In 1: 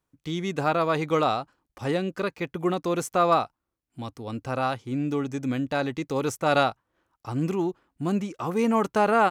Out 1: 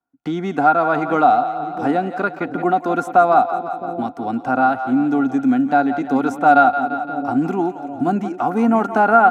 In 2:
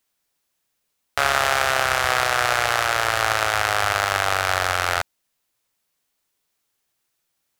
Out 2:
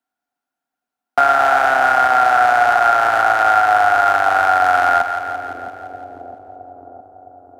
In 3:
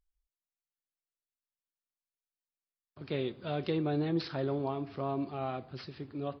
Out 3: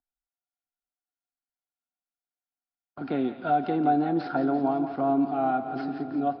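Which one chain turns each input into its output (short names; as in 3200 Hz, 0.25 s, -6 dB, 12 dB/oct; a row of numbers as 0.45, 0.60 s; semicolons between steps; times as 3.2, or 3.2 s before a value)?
gate with hold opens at -44 dBFS; bell 890 Hz +10 dB 2.5 oct; on a send: split-band echo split 500 Hz, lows 0.662 s, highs 0.171 s, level -11.5 dB; on the sum: limiter -2 dBFS; small resonant body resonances 260/730/1400 Hz, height 18 dB, ringing for 45 ms; three-band squash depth 40%; gain -8 dB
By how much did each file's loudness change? +8.5, +6.5, +8.5 LU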